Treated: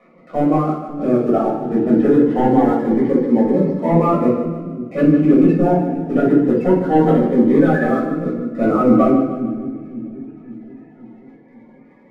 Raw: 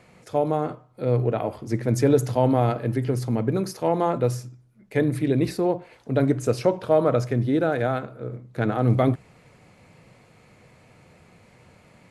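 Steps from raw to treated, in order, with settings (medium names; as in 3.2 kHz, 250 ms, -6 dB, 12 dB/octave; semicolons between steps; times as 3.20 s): coarse spectral quantiser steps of 30 dB; elliptic high-pass 170 Hz, stop band 40 dB; reverb removal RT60 0.9 s; low-pass 2.1 kHz 24 dB/octave; in parallel at +2.5 dB: peak limiter -16.5 dBFS, peak gain reduction 8.5 dB; on the sum: waveshaping leveller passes 1; 3.28–3.90 s: comb of notches 1.2 kHz; two-band feedback delay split 350 Hz, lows 532 ms, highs 152 ms, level -10 dB; simulated room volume 450 m³, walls furnished, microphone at 6.2 m; Shepard-style phaser rising 0.23 Hz; trim -8 dB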